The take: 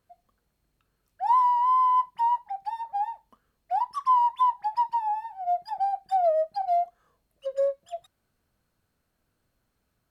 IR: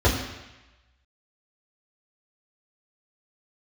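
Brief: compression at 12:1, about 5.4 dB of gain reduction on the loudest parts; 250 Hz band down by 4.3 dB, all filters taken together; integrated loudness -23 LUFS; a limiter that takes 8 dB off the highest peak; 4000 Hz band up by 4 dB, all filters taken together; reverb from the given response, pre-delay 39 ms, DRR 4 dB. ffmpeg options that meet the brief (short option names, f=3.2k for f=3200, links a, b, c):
-filter_complex "[0:a]equalizer=f=250:t=o:g=-6.5,equalizer=f=4k:t=o:g=5.5,acompressor=threshold=-23dB:ratio=12,alimiter=level_in=2.5dB:limit=-24dB:level=0:latency=1,volume=-2.5dB,asplit=2[a][b];[1:a]atrim=start_sample=2205,adelay=39[c];[b][c]afir=irnorm=-1:irlink=0,volume=-22dB[d];[a][d]amix=inputs=2:normalize=0,volume=8.5dB"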